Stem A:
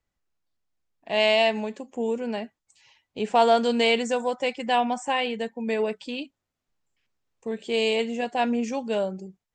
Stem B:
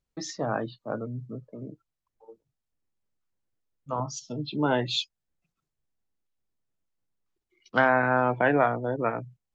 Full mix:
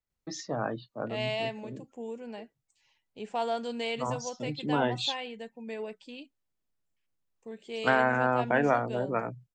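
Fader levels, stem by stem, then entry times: −12.0, −3.0 decibels; 0.00, 0.10 seconds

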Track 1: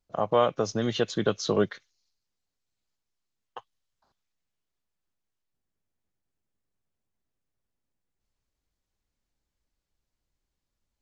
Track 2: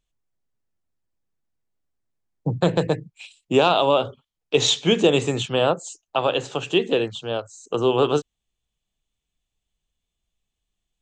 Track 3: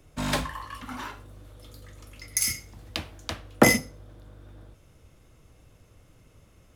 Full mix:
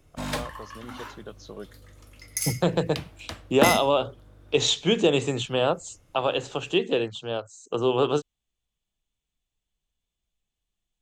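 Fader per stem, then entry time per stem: −16.0, −3.5, −3.5 decibels; 0.00, 0.00, 0.00 seconds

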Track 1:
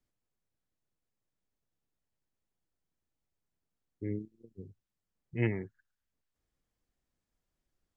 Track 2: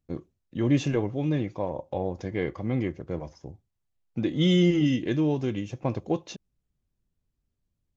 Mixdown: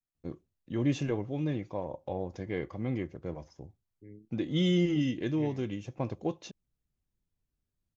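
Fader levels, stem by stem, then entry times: −14.5, −5.5 decibels; 0.00, 0.15 seconds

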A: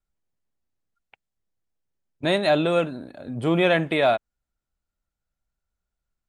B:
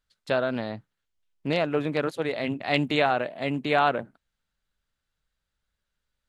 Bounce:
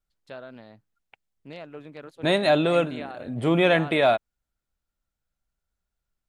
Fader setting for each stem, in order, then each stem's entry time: 0.0, −15.5 decibels; 0.00, 0.00 seconds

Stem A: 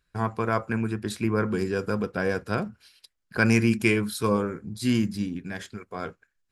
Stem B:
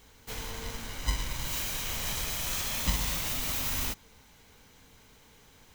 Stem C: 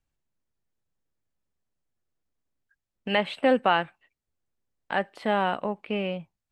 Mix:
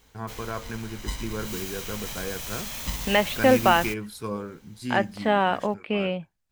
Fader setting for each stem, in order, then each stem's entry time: −8.0, −2.5, +3.0 decibels; 0.00, 0.00, 0.00 seconds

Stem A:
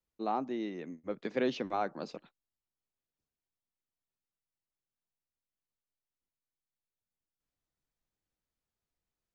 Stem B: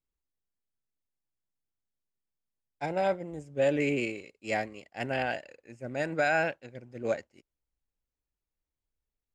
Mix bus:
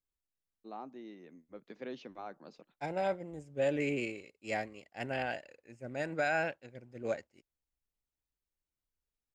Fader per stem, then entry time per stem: −12.0, −5.0 decibels; 0.45, 0.00 seconds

